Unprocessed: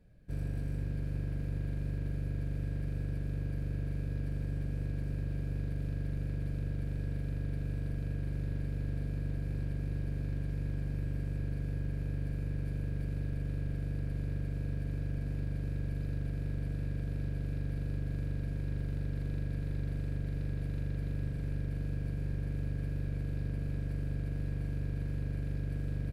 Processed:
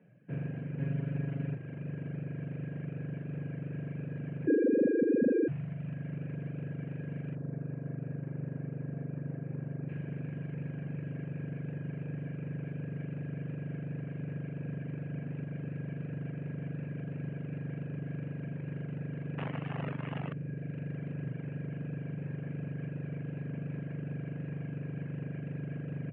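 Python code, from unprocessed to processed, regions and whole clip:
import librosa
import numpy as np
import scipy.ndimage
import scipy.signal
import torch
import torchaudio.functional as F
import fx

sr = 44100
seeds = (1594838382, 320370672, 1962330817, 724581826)

y = fx.chain(x, sr, fx.high_shelf(hz=4000.0, db=5.0),
    fx.comb(ms=7.2, depth=0.89), at=(0.79, 1.55))
y = fx.chain(y, sr, fx.sine_speech(),
    fx.lowpass(hz=1100.0, slope=12),
    fx.peak_eq(hz=670.0, db=10.0, octaves=1.8), at=(4.47, 5.48))
y = fx.chain(y, sr, fx.lowpass(hz=1500.0, slope=12),
    fx.room_flutter(wall_m=9.6, rt60_s=0.22), at=(7.35, 9.89))
y = fx.chain(y, sr, fx.lowpass(hz=3100.0, slope=12),
    fx.quant_companded(bits=4), at=(19.38, 20.33))
y = fx.dereverb_blind(y, sr, rt60_s=1.5)
y = scipy.signal.sosfilt(scipy.signal.cheby1(5, 1.0, [120.0, 2900.0], 'bandpass', fs=sr, output='sos'), y)
y = F.gain(torch.from_numpy(y), 6.0).numpy()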